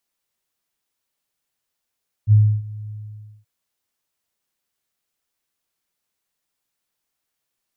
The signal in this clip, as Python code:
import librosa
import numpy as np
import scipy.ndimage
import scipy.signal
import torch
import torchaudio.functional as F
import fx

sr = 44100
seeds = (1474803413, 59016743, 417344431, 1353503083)

y = fx.adsr_tone(sr, wave='sine', hz=106.0, attack_ms=51.0, decay_ms=300.0, sustain_db=-21.5, held_s=0.63, release_ms=549.0, level_db=-7.5)